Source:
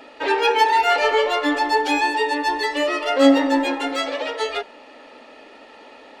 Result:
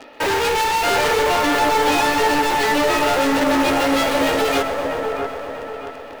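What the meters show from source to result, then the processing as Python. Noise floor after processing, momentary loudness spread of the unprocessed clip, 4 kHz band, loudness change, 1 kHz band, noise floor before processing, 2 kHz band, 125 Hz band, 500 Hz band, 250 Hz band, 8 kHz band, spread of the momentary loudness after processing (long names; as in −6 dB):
−35 dBFS, 10 LU, +2.5 dB, +1.5 dB, +2.0 dB, −45 dBFS, +2.5 dB, can't be measured, +2.5 dB, +0.5 dB, +10.0 dB, 11 LU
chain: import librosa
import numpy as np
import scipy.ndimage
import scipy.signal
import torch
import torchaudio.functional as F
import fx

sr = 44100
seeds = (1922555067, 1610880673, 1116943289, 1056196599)

p1 = fx.cvsd(x, sr, bps=32000)
p2 = scipy.signal.sosfilt(scipy.signal.butter(2, 3600.0, 'lowpass', fs=sr, output='sos'), p1)
p3 = fx.fuzz(p2, sr, gain_db=36.0, gate_db=-35.0)
p4 = p2 + F.gain(torch.from_numpy(p3), -4.5).numpy()
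p5 = fx.quant_float(p4, sr, bits=4)
p6 = np.clip(p5, -10.0 ** (-19.5 / 20.0), 10.0 ** (-19.5 / 20.0))
p7 = p6 + fx.echo_wet_lowpass(p6, sr, ms=640, feedback_pct=34, hz=1600.0, wet_db=-4, dry=0)
p8 = fx.echo_crushed(p7, sr, ms=128, feedback_pct=80, bits=9, wet_db=-14.0)
y = F.gain(torch.from_numpy(p8), 1.5).numpy()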